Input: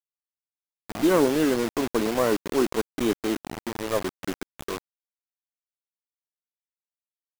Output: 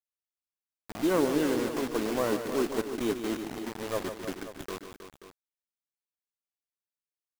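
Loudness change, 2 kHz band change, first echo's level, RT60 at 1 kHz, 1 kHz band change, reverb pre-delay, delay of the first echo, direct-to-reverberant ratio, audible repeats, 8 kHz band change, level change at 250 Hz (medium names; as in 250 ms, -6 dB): -5.0 dB, -5.0 dB, -9.0 dB, no reverb, -5.0 dB, no reverb, 148 ms, no reverb, 3, -5.0 dB, -5.0 dB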